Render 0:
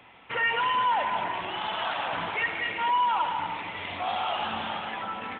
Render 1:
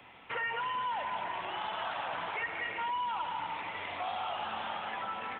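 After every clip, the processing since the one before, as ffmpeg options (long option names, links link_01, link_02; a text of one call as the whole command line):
ffmpeg -i in.wav -filter_complex "[0:a]acrossover=split=180|400|2100[link_01][link_02][link_03][link_04];[link_01]acompressor=threshold=-58dB:ratio=4[link_05];[link_02]acompressor=threshold=-59dB:ratio=4[link_06];[link_03]acompressor=threshold=-33dB:ratio=4[link_07];[link_04]acompressor=threshold=-46dB:ratio=4[link_08];[link_05][link_06][link_07][link_08]amix=inputs=4:normalize=0,volume=-1.5dB" out.wav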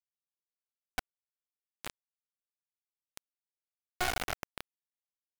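ffmpeg -i in.wav -filter_complex "[0:a]asplit=3[link_01][link_02][link_03];[link_01]bandpass=frequency=730:width_type=q:width=8,volume=0dB[link_04];[link_02]bandpass=frequency=1090:width_type=q:width=8,volume=-6dB[link_05];[link_03]bandpass=frequency=2440:width_type=q:width=8,volume=-9dB[link_06];[link_04][link_05][link_06]amix=inputs=3:normalize=0,acrusher=bits=3:dc=4:mix=0:aa=0.000001,volume=8.5dB" out.wav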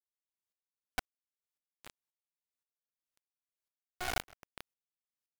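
ffmpeg -i in.wav -af "aeval=exprs='val(0)*pow(10,-33*if(lt(mod(-1.9*n/s,1),2*abs(-1.9)/1000),1-mod(-1.9*n/s,1)/(2*abs(-1.9)/1000),(mod(-1.9*n/s,1)-2*abs(-1.9)/1000)/(1-2*abs(-1.9)/1000))/20)':channel_layout=same,volume=3.5dB" out.wav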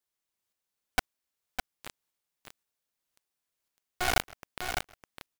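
ffmpeg -i in.wav -af "aecho=1:1:606:0.473,volume=8.5dB" out.wav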